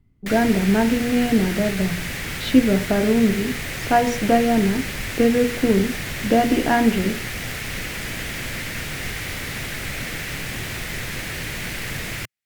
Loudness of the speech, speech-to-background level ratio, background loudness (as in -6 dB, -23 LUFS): -20.0 LUFS, 8.0 dB, -28.0 LUFS